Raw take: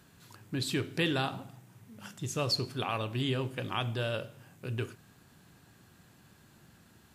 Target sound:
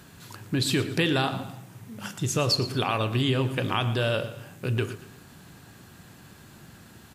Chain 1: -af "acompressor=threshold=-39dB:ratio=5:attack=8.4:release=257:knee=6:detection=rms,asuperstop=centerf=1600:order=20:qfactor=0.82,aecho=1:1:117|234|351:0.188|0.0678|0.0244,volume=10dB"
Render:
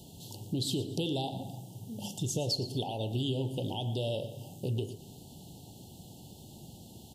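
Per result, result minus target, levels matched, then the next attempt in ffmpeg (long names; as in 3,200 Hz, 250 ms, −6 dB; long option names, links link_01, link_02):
2,000 Hz band −14.0 dB; downward compressor: peak gain reduction +8 dB
-af "acompressor=threshold=-39dB:ratio=5:attack=8.4:release=257:knee=6:detection=rms,aecho=1:1:117|234|351:0.188|0.0678|0.0244,volume=10dB"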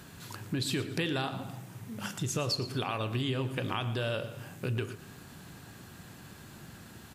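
downward compressor: peak gain reduction +8 dB
-af "acompressor=threshold=-29dB:ratio=5:attack=8.4:release=257:knee=6:detection=rms,aecho=1:1:117|234|351:0.188|0.0678|0.0244,volume=10dB"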